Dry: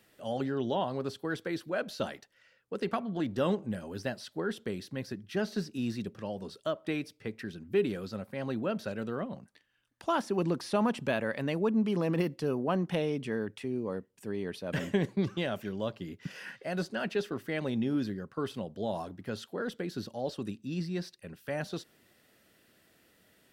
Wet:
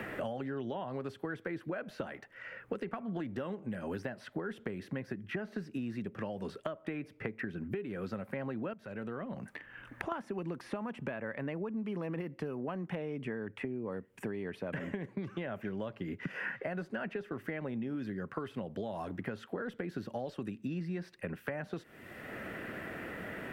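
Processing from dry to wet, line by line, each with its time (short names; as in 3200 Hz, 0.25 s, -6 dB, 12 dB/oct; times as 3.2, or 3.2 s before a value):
8.73–10.12 compressor 2.5:1, threshold -55 dBFS
whole clip: compressor, threshold -40 dBFS; resonant high shelf 3000 Hz -11.5 dB, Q 1.5; three-band squash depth 100%; gain +4 dB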